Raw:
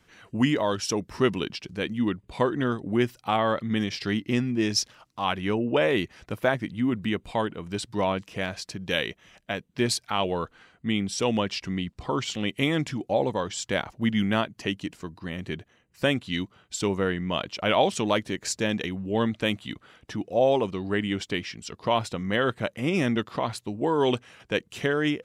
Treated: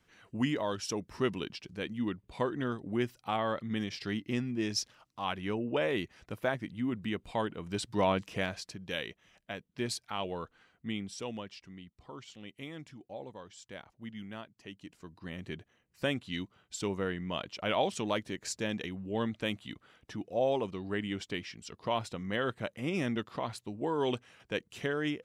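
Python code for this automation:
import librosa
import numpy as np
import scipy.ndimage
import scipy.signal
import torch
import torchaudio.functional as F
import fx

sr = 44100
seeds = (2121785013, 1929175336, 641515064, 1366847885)

y = fx.gain(x, sr, db=fx.line((7.03, -8.0), (8.29, -1.0), (8.84, -10.0), (10.9, -10.0), (11.69, -19.5), (14.63, -19.5), (15.27, -8.0)))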